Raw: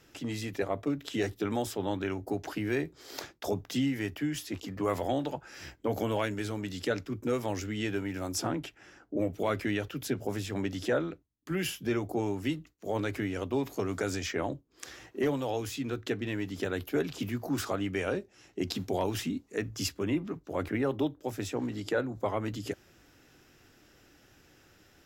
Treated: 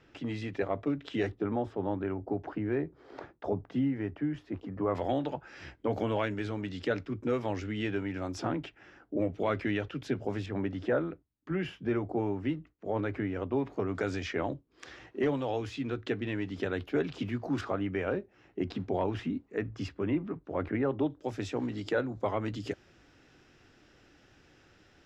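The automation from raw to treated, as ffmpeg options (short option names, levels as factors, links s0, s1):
-af "asetnsamples=n=441:p=0,asendcmd='1.32 lowpass f 1300;4.95 lowpass f 3300;10.46 lowpass f 1900;13.95 lowpass f 3500;17.61 lowpass f 2100;21.1 lowpass f 4900',lowpass=3000"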